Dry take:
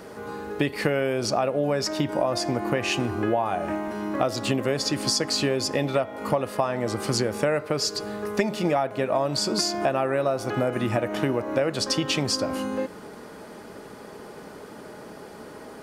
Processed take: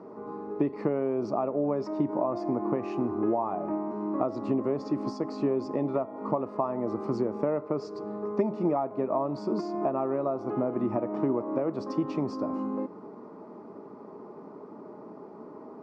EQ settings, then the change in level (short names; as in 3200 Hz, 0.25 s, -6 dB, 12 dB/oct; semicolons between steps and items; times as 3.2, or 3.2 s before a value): air absorption 490 m; speaker cabinet 240–6600 Hz, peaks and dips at 520 Hz -9 dB, 760 Hz -6 dB, 1600 Hz -6 dB, 3100 Hz -9 dB, 4700 Hz -5 dB; band shelf 2400 Hz -14.5 dB; +2.5 dB